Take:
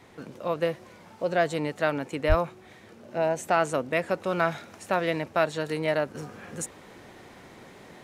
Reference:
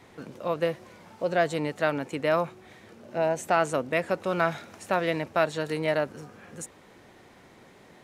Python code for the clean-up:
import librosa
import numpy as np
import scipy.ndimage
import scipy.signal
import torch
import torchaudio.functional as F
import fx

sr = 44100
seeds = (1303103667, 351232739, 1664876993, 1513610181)

y = fx.highpass(x, sr, hz=140.0, slope=24, at=(2.28, 2.4), fade=0.02)
y = fx.gain(y, sr, db=fx.steps((0.0, 0.0), (6.15, -5.0)))